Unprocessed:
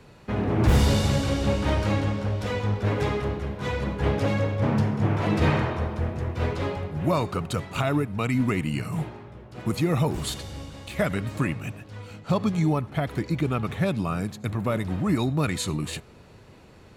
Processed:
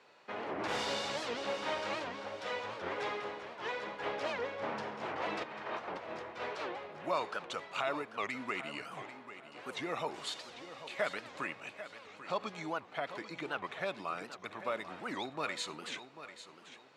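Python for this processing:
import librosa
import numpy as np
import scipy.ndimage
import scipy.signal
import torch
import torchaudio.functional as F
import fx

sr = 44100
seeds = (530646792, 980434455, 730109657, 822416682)

y = fx.over_compress(x, sr, threshold_db=-31.0, ratio=-1.0, at=(5.42, 6.19), fade=0.02)
y = fx.bandpass_edges(y, sr, low_hz=590.0, high_hz=5500.0)
y = fx.echo_feedback(y, sr, ms=793, feedback_pct=29, wet_db=-12.5)
y = fx.record_warp(y, sr, rpm=78.0, depth_cents=250.0)
y = y * librosa.db_to_amplitude(-5.5)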